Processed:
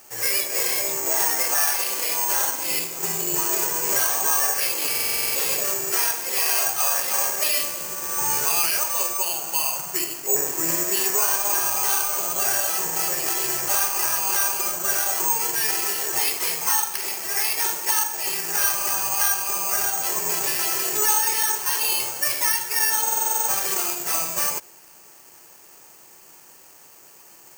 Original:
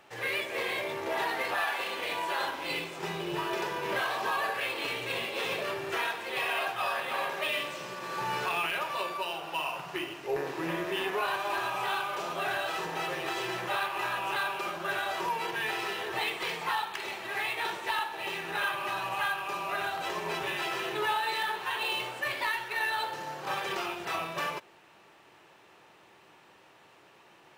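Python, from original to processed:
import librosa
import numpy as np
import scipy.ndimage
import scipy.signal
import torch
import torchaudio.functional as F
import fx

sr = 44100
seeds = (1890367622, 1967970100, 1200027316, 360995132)

y = (np.kron(scipy.signal.resample_poly(x, 1, 6), np.eye(6)[0]) * 6)[:len(x)]
y = fx.buffer_glitch(y, sr, at_s=(4.89, 23.02), block=2048, repeats=9)
y = F.gain(torch.from_numpy(y), 2.0).numpy()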